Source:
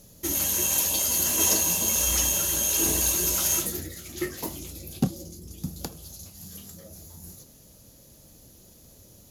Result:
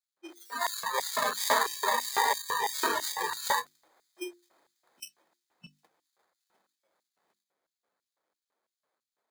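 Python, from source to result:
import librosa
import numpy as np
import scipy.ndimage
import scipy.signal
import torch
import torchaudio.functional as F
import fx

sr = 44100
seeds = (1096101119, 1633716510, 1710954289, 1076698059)

p1 = fx.sample_hold(x, sr, seeds[0], rate_hz=2800.0, jitter_pct=0)
p2 = p1 + fx.echo_feedback(p1, sr, ms=759, feedback_pct=56, wet_db=-15.0, dry=0)
p3 = fx.noise_reduce_blind(p2, sr, reduce_db=29)
p4 = fx.filter_lfo_highpass(p3, sr, shape='square', hz=3.0, low_hz=510.0, high_hz=4600.0, q=1.0)
y = fx.hum_notches(p4, sr, base_hz=50, count=7)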